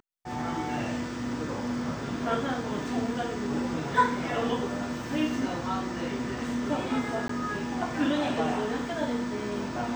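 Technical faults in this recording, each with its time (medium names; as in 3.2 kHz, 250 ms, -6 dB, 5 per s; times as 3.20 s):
7.28–7.29 s: dropout 14 ms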